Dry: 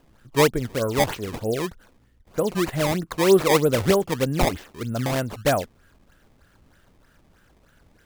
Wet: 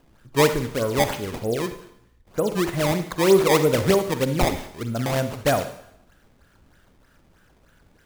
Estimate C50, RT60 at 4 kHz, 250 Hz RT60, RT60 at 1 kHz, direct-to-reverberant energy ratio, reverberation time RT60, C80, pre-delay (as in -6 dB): 10.0 dB, 0.70 s, 0.70 s, 0.75 s, 9.0 dB, 0.75 s, 13.5 dB, 40 ms